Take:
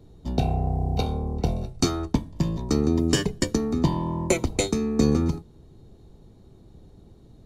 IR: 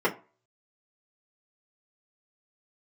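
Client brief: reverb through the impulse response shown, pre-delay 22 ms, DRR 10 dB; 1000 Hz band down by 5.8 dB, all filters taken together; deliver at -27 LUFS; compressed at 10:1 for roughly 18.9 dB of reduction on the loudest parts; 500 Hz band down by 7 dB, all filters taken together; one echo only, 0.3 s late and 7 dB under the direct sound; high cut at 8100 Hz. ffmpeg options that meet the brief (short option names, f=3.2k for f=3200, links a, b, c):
-filter_complex "[0:a]lowpass=8.1k,equalizer=f=500:t=o:g=-9,equalizer=f=1k:t=o:g=-4,acompressor=threshold=-38dB:ratio=10,aecho=1:1:300:0.447,asplit=2[a][b];[1:a]atrim=start_sample=2205,adelay=22[c];[b][c]afir=irnorm=-1:irlink=0,volume=-24dB[d];[a][d]amix=inputs=2:normalize=0,volume=15.5dB"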